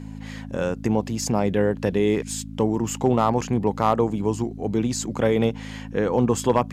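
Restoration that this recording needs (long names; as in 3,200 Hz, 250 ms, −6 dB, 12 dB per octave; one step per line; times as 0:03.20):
clipped peaks rebuilt −8.5 dBFS
hum removal 53.3 Hz, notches 5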